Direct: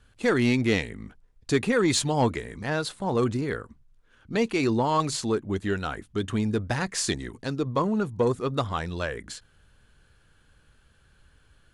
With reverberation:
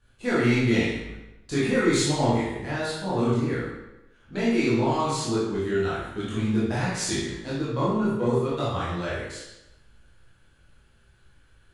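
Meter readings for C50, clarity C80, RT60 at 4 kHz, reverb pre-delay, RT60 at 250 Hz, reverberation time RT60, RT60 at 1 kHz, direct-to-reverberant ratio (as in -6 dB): -1.0 dB, 3.0 dB, 0.80 s, 18 ms, 0.90 s, 0.95 s, 0.95 s, -10.0 dB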